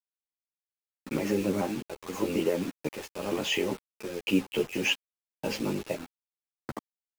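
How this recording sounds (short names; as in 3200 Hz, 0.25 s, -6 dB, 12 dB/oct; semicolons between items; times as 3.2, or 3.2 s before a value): chopped level 0.94 Hz, depth 60%, duty 70%; a quantiser's noise floor 6-bit, dither none; a shimmering, thickened sound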